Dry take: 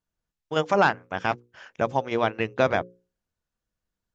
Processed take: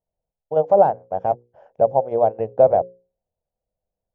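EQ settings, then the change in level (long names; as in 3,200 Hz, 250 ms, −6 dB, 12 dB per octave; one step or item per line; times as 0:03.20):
drawn EQ curve 140 Hz 0 dB, 310 Hz −6 dB, 550 Hz +11 dB, 770 Hz +8 dB, 1,200 Hz −15 dB, 2,100 Hz −23 dB, 4,300 Hz −28 dB
0.0 dB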